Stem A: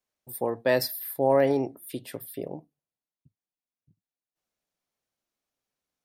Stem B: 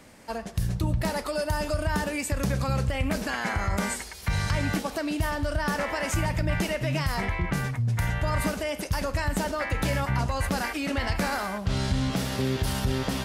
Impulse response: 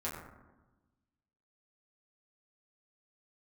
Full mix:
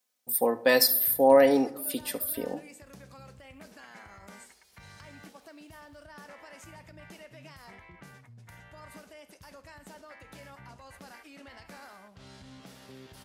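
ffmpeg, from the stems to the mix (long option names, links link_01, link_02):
-filter_complex "[0:a]highshelf=frequency=3500:gain=9,aecho=1:1:4:0.59,volume=0.5dB,asplit=3[link_01][link_02][link_03];[link_02]volume=-18dB[link_04];[link_03]volume=-18dB[link_05];[1:a]adelay=500,volume=-19.5dB,asplit=2[link_06][link_07];[link_07]volume=-23.5dB[link_08];[2:a]atrim=start_sample=2205[link_09];[link_04][link_09]afir=irnorm=-1:irlink=0[link_10];[link_05][link_08]amix=inputs=2:normalize=0,aecho=0:1:72:1[link_11];[link_01][link_06][link_10][link_11]amix=inputs=4:normalize=0,highpass=frequency=220:poles=1"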